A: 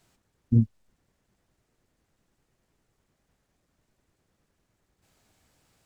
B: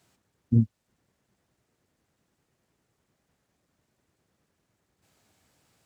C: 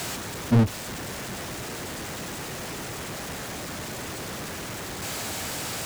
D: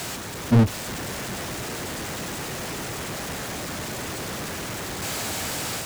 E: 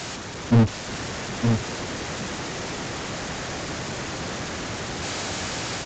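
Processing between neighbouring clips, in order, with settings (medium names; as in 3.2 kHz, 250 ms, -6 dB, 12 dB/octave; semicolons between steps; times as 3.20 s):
high-pass 78 Hz 12 dB/octave
bass shelf 320 Hz -5 dB; power-law waveshaper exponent 0.35; trim +2 dB
level rider gain up to 3 dB
delay 916 ms -5 dB; µ-law 128 kbps 16 kHz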